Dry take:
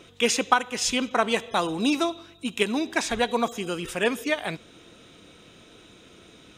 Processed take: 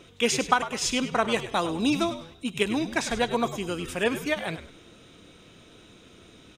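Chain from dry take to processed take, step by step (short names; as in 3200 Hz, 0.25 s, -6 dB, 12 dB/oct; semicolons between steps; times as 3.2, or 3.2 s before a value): low shelf 190 Hz +4 dB; on a send: frequency-shifting echo 0.101 s, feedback 31%, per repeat -90 Hz, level -12 dB; on the sum: gain -2 dB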